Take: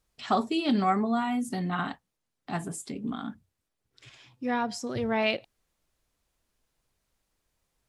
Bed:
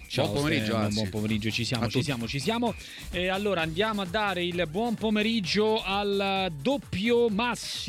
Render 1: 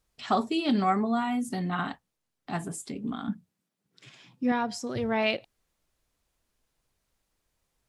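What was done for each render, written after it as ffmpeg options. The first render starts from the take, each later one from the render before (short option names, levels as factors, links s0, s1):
-filter_complex "[0:a]asettb=1/sr,asplit=3[s0][s1][s2];[s0]atrim=end=3.284[s3];[s1]atrim=start=3.28:end=4.52,asetpts=PTS-STARTPTS,afade=t=in:d=0.004:c=qsin,afade=t=out:st=1.236:d=0.004:c=qsin,highpass=f=180:t=q:w=4.9[s4];[s2]atrim=start=4.516[s5];[s3][s4]acrossfade=d=0.004:c1=hsin:c2=qsin[s6];[s6][s5]acrossfade=d=0.004:c1=qsin:c2=hsin"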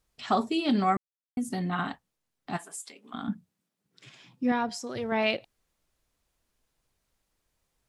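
-filter_complex "[0:a]asplit=3[s0][s1][s2];[s0]afade=t=out:st=2.56:d=0.02[s3];[s1]highpass=870,afade=t=in:st=2.56:d=0.02,afade=t=out:st=3.13:d=0.02[s4];[s2]afade=t=in:st=3.13:d=0.02[s5];[s3][s4][s5]amix=inputs=3:normalize=0,asettb=1/sr,asplit=3[s6][s7][s8];[s6]atrim=end=4.694[s9];[s7]atrim=start=4.69:end=5.12,asetpts=PTS-STARTPTS,afade=t=in:d=0.004:c=qsin,afade=t=out:st=0.426:d=0.004:c=qsin,lowshelf=f=250:g=-9[s10];[s8]atrim=start=5.116[s11];[s9][s10]acrossfade=d=0.004:c1=hsin:c2=qsin[s12];[s12][s11]acrossfade=d=0.004:c1=qsin:c2=hsin,asplit=3[s13][s14][s15];[s13]atrim=end=0.97,asetpts=PTS-STARTPTS,afade=t=out:st=0.966:d=0.004:c=hsin[s16];[s14]atrim=start=0.97:end=1.37,asetpts=PTS-STARTPTS,volume=0[s17];[s15]atrim=start=1.37,asetpts=PTS-STARTPTS,afade=t=in:d=0.004:c=hsin[s18];[s16][s17][s18]concat=n=3:v=0:a=1"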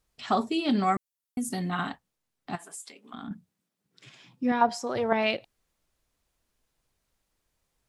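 -filter_complex "[0:a]asettb=1/sr,asplit=3[s0][s1][s2];[s0]atrim=end=0.834[s3];[s1]atrim=start=0.83:end=1.89,asetpts=PTS-STARTPTS,afade=t=in:d=0.004:c=qsin,afade=t=out:st=1.056:d=0.004:c=qsin,aemphasis=mode=production:type=cd[s4];[s2]atrim=start=1.886[s5];[s3][s4]acrossfade=d=0.004:c1=hsin:c2=qsin[s6];[s6][s5]acrossfade=d=0.004:c1=qsin:c2=hsin,asettb=1/sr,asplit=3[s7][s8][s9];[s7]atrim=end=2.554[s10];[s8]atrim=start=2.55:end=3.31,asetpts=PTS-STARTPTS,afade=t=in:d=0.004:c=qsin,afade=t=out:st=0.756:d=0.004:c=qsin,acompressor=threshold=0.0158:ratio=4:attack=3.2:release=140:knee=1:detection=peak[s11];[s9]atrim=start=3.306[s12];[s10][s11]acrossfade=d=0.004:c1=hsin:c2=qsin[s13];[s13][s12]acrossfade=d=0.004:c1=qsin:c2=hsin,asettb=1/sr,asplit=3[s14][s15][s16];[s14]atrim=end=4.614[s17];[s15]atrim=start=4.61:end=5.13,asetpts=PTS-STARTPTS,afade=t=in:d=0.004:c=qsin,afade=t=out:st=0.516:d=0.004:c=qsin,equalizer=f=840:w=0.79:g=11.5[s18];[s16]atrim=start=5.126[s19];[s17][s18]acrossfade=d=0.004:c1=hsin:c2=qsin[s20];[s20][s19]acrossfade=d=0.004:c1=qsin:c2=hsin"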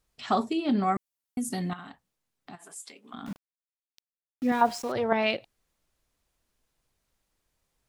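-filter_complex "[0:a]asettb=1/sr,asplit=3[s0][s1][s2];[s0]atrim=end=0.534[s3];[s1]atrim=start=0.53:end=0.96,asetpts=PTS-STARTPTS,afade=t=in:d=0.004:c=qsin,afade=t=out:st=0.426:d=0.004:c=qsin,highshelf=f=2300:g=-9.5[s4];[s2]atrim=start=0.956[s5];[s3][s4]acrossfade=d=0.004:c1=hsin:c2=qsin[s6];[s6][s5]acrossfade=d=0.004:c1=qsin:c2=hsin,asettb=1/sr,asplit=3[s7][s8][s9];[s7]atrim=end=1.734[s10];[s8]atrim=start=1.73:end=2.76,asetpts=PTS-STARTPTS,afade=t=in:d=0.004:c=qsin,afade=t=out:st=1.026:d=0.004:c=qsin,acompressor=threshold=0.00631:ratio=3:attack=3.2:release=140:knee=1:detection=peak[s11];[s9]atrim=start=2.756[s12];[s10][s11]acrossfade=d=0.004:c1=hsin:c2=qsin[s13];[s13][s12]acrossfade=d=0.004:c1=qsin:c2=hsin,asettb=1/sr,asplit=3[s14][s15][s16];[s14]atrim=end=3.264[s17];[s15]atrim=start=3.26:end=4.92,asetpts=PTS-STARTPTS,afade=t=in:d=0.004:c=qsin,afade=t=out:st=1.656:d=0.004:c=qsin,aeval=exprs='val(0)*gte(abs(val(0)),0.01)':c=same[s18];[s16]atrim=start=4.916[s19];[s17][s18]acrossfade=d=0.004:c1=hsin:c2=qsin[s20];[s20][s19]acrossfade=d=0.004:c1=qsin:c2=hsin"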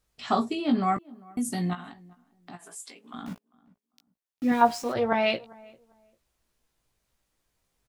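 -filter_complex "[0:a]asplit=2[s0][s1];[s1]adelay=17,volume=0.531[s2];[s0][s2]amix=inputs=2:normalize=0,asplit=2[s3][s4];[s4]adelay=397,lowpass=f=1200:p=1,volume=0.0708,asplit=2[s5][s6];[s6]adelay=397,lowpass=f=1200:p=1,volume=0.24[s7];[s3][s5][s7]amix=inputs=3:normalize=0"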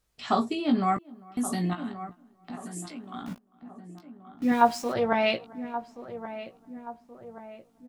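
-filter_complex "[0:a]asplit=2[s0][s1];[s1]adelay=1127,lowpass=f=1400:p=1,volume=0.251,asplit=2[s2][s3];[s3]adelay=1127,lowpass=f=1400:p=1,volume=0.52,asplit=2[s4][s5];[s5]adelay=1127,lowpass=f=1400:p=1,volume=0.52,asplit=2[s6][s7];[s7]adelay=1127,lowpass=f=1400:p=1,volume=0.52,asplit=2[s8][s9];[s9]adelay=1127,lowpass=f=1400:p=1,volume=0.52[s10];[s0][s2][s4][s6][s8][s10]amix=inputs=6:normalize=0"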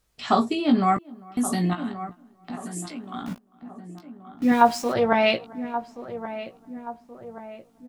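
-af "volume=1.68,alimiter=limit=0.708:level=0:latency=1"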